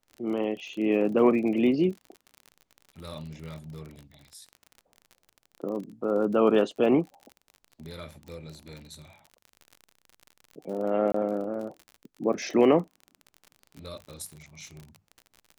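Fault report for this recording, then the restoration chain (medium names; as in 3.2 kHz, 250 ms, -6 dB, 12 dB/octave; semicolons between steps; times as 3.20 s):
crackle 41 per s -36 dBFS
11.12–11.14 s: dropout 24 ms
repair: de-click; interpolate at 11.12 s, 24 ms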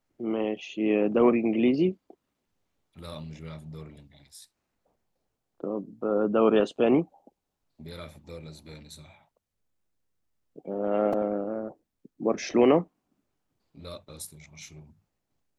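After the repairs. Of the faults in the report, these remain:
nothing left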